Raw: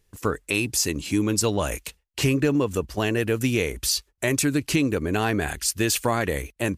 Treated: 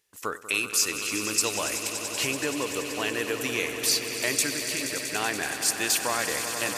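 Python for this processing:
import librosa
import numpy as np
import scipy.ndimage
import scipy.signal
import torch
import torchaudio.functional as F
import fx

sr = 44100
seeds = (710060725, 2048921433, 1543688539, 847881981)

y = fx.highpass(x, sr, hz=1100.0, slope=6)
y = fx.level_steps(y, sr, step_db=17, at=(4.5, 5.13))
y = fx.echo_swell(y, sr, ms=95, loudest=5, wet_db=-12.0)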